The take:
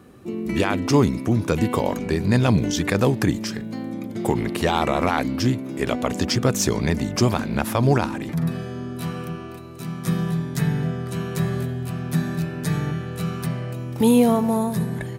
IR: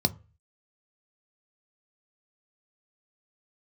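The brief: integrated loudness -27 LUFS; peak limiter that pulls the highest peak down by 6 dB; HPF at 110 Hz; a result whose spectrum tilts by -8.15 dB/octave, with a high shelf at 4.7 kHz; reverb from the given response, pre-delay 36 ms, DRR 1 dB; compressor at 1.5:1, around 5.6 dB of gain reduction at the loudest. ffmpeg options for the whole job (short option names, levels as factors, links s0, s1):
-filter_complex "[0:a]highpass=110,highshelf=f=4700:g=-6.5,acompressor=threshold=0.0398:ratio=1.5,alimiter=limit=0.168:level=0:latency=1,asplit=2[s0][s1];[1:a]atrim=start_sample=2205,adelay=36[s2];[s1][s2]afir=irnorm=-1:irlink=0,volume=0.335[s3];[s0][s3]amix=inputs=2:normalize=0,volume=0.473"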